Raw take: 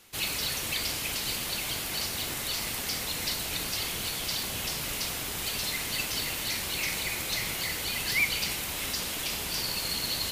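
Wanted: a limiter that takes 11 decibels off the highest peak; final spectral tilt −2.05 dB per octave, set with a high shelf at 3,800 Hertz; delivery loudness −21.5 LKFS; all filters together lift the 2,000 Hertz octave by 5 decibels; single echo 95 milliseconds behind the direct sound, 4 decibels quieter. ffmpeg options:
ffmpeg -i in.wav -af "equalizer=frequency=2000:width_type=o:gain=7.5,highshelf=frequency=3800:gain=-5.5,alimiter=limit=-22dB:level=0:latency=1,aecho=1:1:95:0.631,volume=7.5dB" out.wav

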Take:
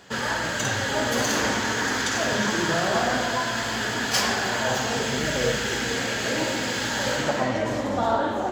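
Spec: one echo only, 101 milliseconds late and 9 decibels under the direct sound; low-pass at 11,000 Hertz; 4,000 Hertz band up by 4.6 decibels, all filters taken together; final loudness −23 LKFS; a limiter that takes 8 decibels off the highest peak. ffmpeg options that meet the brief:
ffmpeg -i in.wav -af "lowpass=11000,equalizer=frequency=4000:width_type=o:gain=6,alimiter=limit=-16dB:level=0:latency=1,aecho=1:1:101:0.355,volume=1dB" out.wav

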